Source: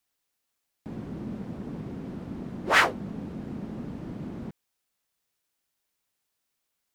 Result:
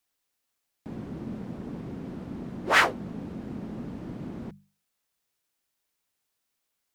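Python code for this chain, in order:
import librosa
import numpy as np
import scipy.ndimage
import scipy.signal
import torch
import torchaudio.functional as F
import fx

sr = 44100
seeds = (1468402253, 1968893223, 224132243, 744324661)

y = fx.hum_notches(x, sr, base_hz=50, count=4)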